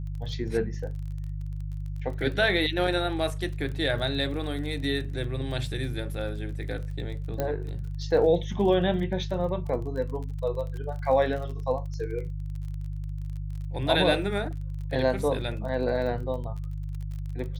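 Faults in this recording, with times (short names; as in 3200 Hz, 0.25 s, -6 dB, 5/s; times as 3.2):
crackle 28/s -36 dBFS
hum 50 Hz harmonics 3 -33 dBFS
7.4 pop -15 dBFS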